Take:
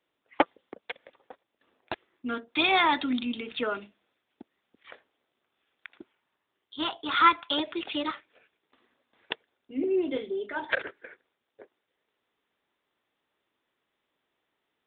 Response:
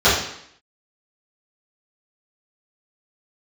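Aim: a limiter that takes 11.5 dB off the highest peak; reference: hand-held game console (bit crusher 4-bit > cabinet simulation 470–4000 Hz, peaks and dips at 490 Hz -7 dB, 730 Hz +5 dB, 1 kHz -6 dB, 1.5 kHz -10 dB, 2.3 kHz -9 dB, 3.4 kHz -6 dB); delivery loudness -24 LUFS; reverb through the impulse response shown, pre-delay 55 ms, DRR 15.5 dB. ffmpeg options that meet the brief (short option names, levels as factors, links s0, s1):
-filter_complex "[0:a]alimiter=limit=0.133:level=0:latency=1,asplit=2[s0][s1];[1:a]atrim=start_sample=2205,adelay=55[s2];[s1][s2]afir=irnorm=-1:irlink=0,volume=0.01[s3];[s0][s3]amix=inputs=2:normalize=0,acrusher=bits=3:mix=0:aa=0.000001,highpass=470,equalizer=f=490:t=q:w=4:g=-7,equalizer=f=730:t=q:w=4:g=5,equalizer=f=1000:t=q:w=4:g=-6,equalizer=f=1500:t=q:w=4:g=-10,equalizer=f=2300:t=q:w=4:g=-9,equalizer=f=3400:t=q:w=4:g=-6,lowpass=f=4000:w=0.5412,lowpass=f=4000:w=1.3066,volume=3.98"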